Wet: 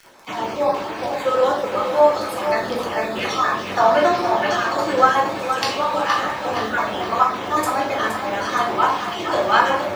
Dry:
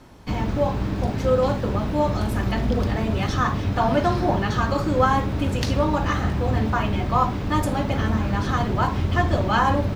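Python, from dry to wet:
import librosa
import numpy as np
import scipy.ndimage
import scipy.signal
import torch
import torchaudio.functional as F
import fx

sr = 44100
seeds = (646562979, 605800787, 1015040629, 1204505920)

p1 = fx.spec_dropout(x, sr, seeds[0], share_pct=26)
p2 = scipy.signal.sosfilt(scipy.signal.butter(2, 520.0, 'highpass', fs=sr, output='sos'), p1)
p3 = fx.dmg_crackle(p2, sr, seeds[1], per_s=30.0, level_db=-37.0)
p4 = p3 + fx.echo_feedback(p3, sr, ms=469, feedback_pct=47, wet_db=-8.5, dry=0)
p5 = fx.room_shoebox(p4, sr, seeds[2], volume_m3=68.0, walls='mixed', distance_m=0.69)
y = p5 * 10.0 ** (4.5 / 20.0)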